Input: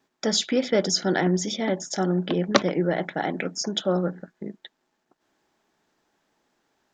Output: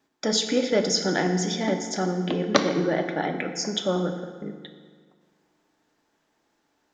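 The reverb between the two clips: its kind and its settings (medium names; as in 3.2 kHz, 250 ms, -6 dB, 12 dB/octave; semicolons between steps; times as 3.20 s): FDN reverb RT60 1.7 s, low-frequency decay 1.05×, high-frequency decay 0.7×, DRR 5 dB; trim -1 dB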